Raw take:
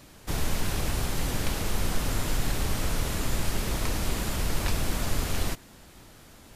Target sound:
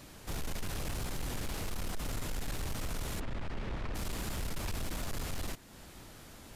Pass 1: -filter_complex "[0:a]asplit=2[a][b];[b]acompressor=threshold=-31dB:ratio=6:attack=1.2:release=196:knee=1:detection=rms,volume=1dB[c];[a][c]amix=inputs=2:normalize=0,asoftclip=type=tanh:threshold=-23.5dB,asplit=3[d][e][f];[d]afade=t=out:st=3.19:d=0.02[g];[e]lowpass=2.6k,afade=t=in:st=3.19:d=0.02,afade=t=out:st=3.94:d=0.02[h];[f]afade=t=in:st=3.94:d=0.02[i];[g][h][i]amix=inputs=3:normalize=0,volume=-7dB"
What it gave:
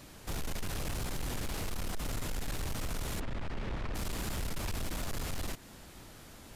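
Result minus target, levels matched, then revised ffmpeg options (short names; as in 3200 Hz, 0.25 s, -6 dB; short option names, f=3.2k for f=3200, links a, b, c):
compressor: peak gain reduction -9 dB
-filter_complex "[0:a]asplit=2[a][b];[b]acompressor=threshold=-41.5dB:ratio=6:attack=1.2:release=196:knee=1:detection=rms,volume=1dB[c];[a][c]amix=inputs=2:normalize=0,asoftclip=type=tanh:threshold=-23.5dB,asplit=3[d][e][f];[d]afade=t=out:st=3.19:d=0.02[g];[e]lowpass=2.6k,afade=t=in:st=3.19:d=0.02,afade=t=out:st=3.94:d=0.02[h];[f]afade=t=in:st=3.94:d=0.02[i];[g][h][i]amix=inputs=3:normalize=0,volume=-7dB"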